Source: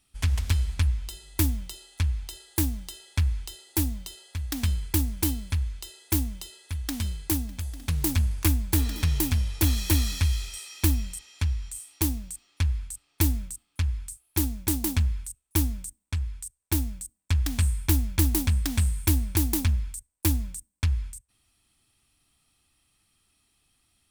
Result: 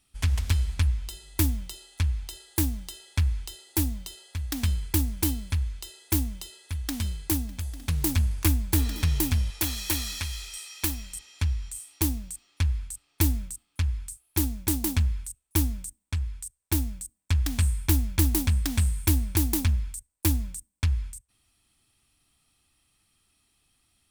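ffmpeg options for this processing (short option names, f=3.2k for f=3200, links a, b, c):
-filter_complex "[0:a]asettb=1/sr,asplit=3[a][b][c];[a]atrim=end=9.504[d];[b]atrim=start=9.5:end=11.14,asetpts=PTS-STARTPTS,afade=t=in:d=0.004:c=qsin,afade=t=out:st=1.636:d=0.004:c=qsin,equalizer=f=100:w=0.33:g=-11.5[e];[c]atrim=start=11.136[f];[d][e]acrossfade=d=0.004:c1=hsin:c2=qsin[g];[g][f]acrossfade=d=0.004:c1=qsin:c2=hsin"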